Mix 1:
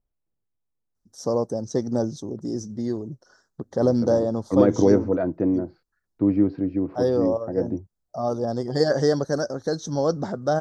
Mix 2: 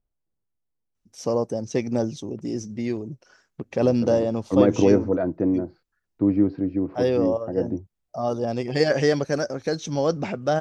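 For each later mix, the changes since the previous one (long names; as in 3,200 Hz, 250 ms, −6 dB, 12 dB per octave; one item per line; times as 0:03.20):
first voice: remove Butterworth band-reject 2,500 Hz, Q 1.1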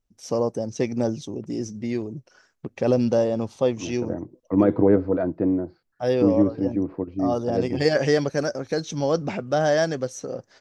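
first voice: entry −0.95 s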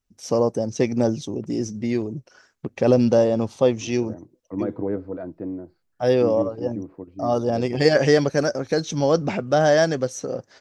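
first voice +3.5 dB
second voice −9.0 dB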